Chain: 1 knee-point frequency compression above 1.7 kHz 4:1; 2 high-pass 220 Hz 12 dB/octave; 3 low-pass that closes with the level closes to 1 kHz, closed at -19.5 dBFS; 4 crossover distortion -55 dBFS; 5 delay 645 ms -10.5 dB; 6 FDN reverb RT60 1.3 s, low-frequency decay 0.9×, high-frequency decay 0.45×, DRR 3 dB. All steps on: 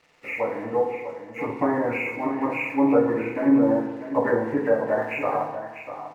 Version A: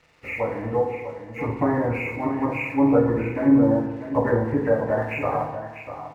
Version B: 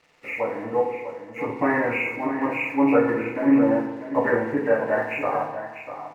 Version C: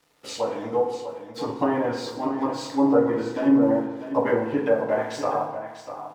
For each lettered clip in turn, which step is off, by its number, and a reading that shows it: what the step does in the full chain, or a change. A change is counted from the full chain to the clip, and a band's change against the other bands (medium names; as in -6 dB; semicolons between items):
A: 2, 125 Hz band +10.0 dB; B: 3, 2 kHz band +3.0 dB; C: 1, 2 kHz band -5.5 dB